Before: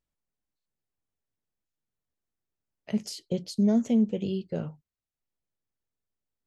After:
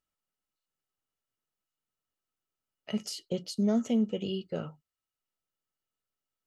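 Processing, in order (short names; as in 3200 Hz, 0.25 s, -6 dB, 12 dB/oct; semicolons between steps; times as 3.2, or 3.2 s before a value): low shelf 230 Hz -8 dB; small resonant body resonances 1300/2900 Hz, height 15 dB, ringing for 65 ms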